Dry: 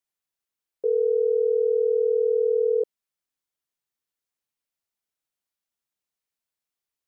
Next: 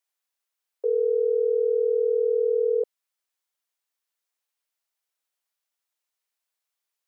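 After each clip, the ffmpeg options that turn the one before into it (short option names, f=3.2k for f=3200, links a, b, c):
-af "highpass=530,volume=3.5dB"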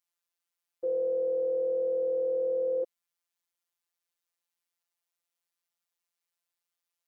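-af "afftfilt=real='hypot(re,im)*cos(PI*b)':imag='0':win_size=1024:overlap=0.75"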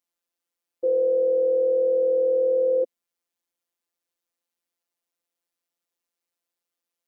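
-af "equalizer=f=125:t=o:w=1:g=-7,equalizer=f=250:t=o:w=1:g=11,equalizer=f=500:t=o:w=1:g=6"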